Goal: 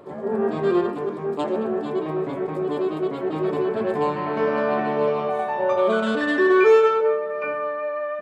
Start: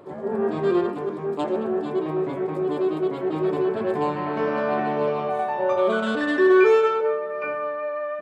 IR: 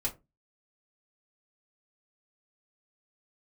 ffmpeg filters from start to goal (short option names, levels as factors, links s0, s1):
-filter_complex "[0:a]asplit=2[s0][s1];[1:a]atrim=start_sample=2205,asetrate=42336,aresample=44100[s2];[s1][s2]afir=irnorm=-1:irlink=0,volume=0.168[s3];[s0][s3]amix=inputs=2:normalize=0"